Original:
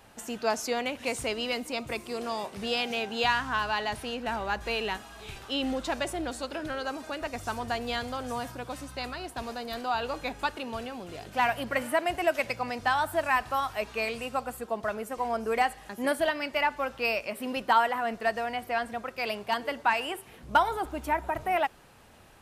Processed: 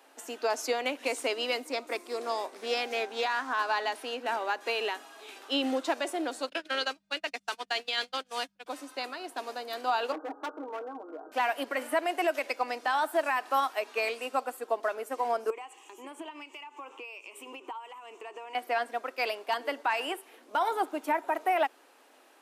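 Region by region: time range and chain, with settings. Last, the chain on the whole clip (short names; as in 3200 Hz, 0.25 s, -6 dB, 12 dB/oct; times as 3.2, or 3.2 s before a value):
1.64–3.86 bell 2900 Hz -7 dB 0.29 oct + Doppler distortion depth 0.11 ms
6.48–8.66 weighting filter D + gate -33 dBFS, range -43 dB + buzz 50 Hz, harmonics 4, -45 dBFS -1 dB/oct
10.12–11.32 steep low-pass 1500 Hz 96 dB/oct + comb 6.4 ms, depth 75% + hard clip -32.5 dBFS
15.5–18.55 ripple EQ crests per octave 0.7, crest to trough 15 dB + compressor 12:1, threshold -35 dBFS + harmonic tremolo 1.4 Hz, depth 50%, crossover 2400 Hz
whole clip: elliptic high-pass 270 Hz, stop band 40 dB; limiter -22 dBFS; upward expander 1.5:1, over -40 dBFS; gain +4.5 dB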